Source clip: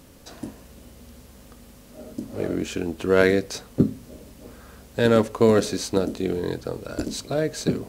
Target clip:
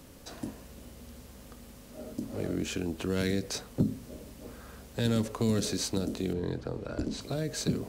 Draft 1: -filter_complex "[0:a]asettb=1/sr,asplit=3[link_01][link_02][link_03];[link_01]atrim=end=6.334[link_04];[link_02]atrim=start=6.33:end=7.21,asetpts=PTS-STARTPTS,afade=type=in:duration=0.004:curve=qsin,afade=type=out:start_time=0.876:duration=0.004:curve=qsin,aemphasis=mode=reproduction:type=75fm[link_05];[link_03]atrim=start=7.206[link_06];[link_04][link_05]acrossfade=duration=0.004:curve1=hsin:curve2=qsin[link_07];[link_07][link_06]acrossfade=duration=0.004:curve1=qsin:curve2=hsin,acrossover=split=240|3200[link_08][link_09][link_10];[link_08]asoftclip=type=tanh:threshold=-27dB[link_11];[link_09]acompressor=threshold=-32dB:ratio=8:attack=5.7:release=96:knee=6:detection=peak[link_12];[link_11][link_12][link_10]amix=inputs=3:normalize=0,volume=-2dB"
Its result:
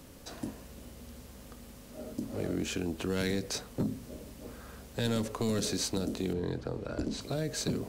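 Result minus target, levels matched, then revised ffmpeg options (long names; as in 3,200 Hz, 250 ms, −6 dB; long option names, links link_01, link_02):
soft clipping: distortion +10 dB
-filter_complex "[0:a]asettb=1/sr,asplit=3[link_01][link_02][link_03];[link_01]atrim=end=6.334[link_04];[link_02]atrim=start=6.33:end=7.21,asetpts=PTS-STARTPTS,afade=type=in:duration=0.004:curve=qsin,afade=type=out:start_time=0.876:duration=0.004:curve=qsin,aemphasis=mode=reproduction:type=75fm[link_05];[link_03]atrim=start=7.206[link_06];[link_04][link_05]acrossfade=duration=0.004:curve1=hsin:curve2=qsin[link_07];[link_07][link_06]acrossfade=duration=0.004:curve1=qsin:curve2=hsin,acrossover=split=240|3200[link_08][link_09][link_10];[link_08]asoftclip=type=tanh:threshold=-16dB[link_11];[link_09]acompressor=threshold=-32dB:ratio=8:attack=5.7:release=96:knee=6:detection=peak[link_12];[link_11][link_12][link_10]amix=inputs=3:normalize=0,volume=-2dB"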